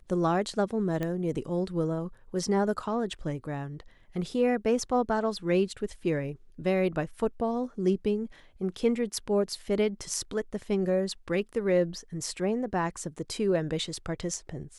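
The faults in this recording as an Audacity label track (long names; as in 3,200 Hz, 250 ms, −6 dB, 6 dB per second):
1.030000	1.030000	click −19 dBFS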